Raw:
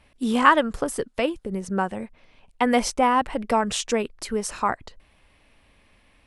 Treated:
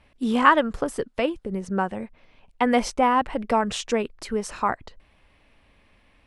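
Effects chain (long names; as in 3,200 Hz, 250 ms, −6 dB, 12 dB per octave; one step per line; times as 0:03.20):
high-shelf EQ 6,800 Hz −10.5 dB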